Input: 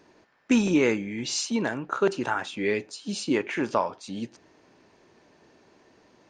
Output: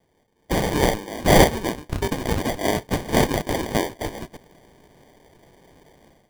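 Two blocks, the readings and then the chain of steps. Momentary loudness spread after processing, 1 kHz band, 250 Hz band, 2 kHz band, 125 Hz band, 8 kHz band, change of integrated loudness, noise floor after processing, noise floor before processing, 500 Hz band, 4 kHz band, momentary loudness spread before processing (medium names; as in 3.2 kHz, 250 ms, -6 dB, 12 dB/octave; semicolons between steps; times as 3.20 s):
13 LU, +7.5 dB, +1.5 dB, +4.0 dB, +12.0 dB, +4.5 dB, +4.5 dB, -65 dBFS, -60 dBFS, +5.0 dB, +6.0 dB, 12 LU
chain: differentiator; level rider gain up to 13.5 dB; sample-and-hold 33×; trim +7 dB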